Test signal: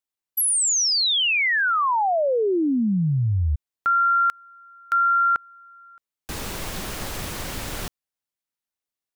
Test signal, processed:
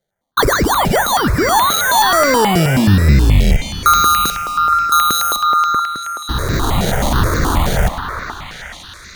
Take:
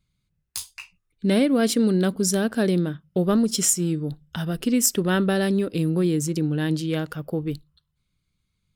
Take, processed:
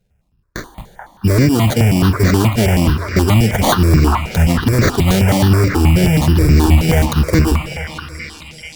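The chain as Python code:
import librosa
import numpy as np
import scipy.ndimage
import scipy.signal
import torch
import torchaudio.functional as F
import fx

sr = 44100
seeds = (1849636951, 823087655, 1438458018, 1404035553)

p1 = fx.octave_divider(x, sr, octaves=1, level_db=3.0)
p2 = fx.rider(p1, sr, range_db=5, speed_s=0.5)
p3 = fx.sample_hold(p2, sr, seeds[0], rate_hz=2600.0, jitter_pct=0)
p4 = p3 + fx.echo_stepped(p3, sr, ms=433, hz=1100.0, octaves=0.7, feedback_pct=70, wet_db=-2.5, dry=0)
p5 = fx.cheby_harmonics(p4, sr, harmonics=(5,), levels_db=(-8,), full_scale_db=-5.0)
p6 = fx.rev_plate(p5, sr, seeds[1], rt60_s=4.1, hf_ratio=0.9, predelay_ms=0, drr_db=12.5)
p7 = fx.phaser_held(p6, sr, hz=9.4, low_hz=290.0, high_hz=3100.0)
y = p7 * 10.0 ** (3.0 / 20.0)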